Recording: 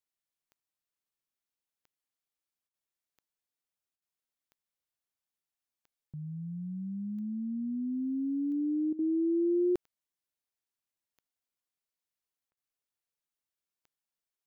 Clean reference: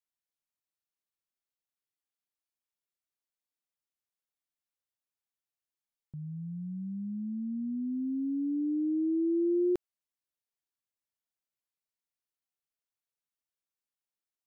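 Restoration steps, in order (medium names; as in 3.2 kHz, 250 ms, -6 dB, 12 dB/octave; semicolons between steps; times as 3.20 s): de-click; interpolate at 2.68/3.96/8.93/12.51 s, 58 ms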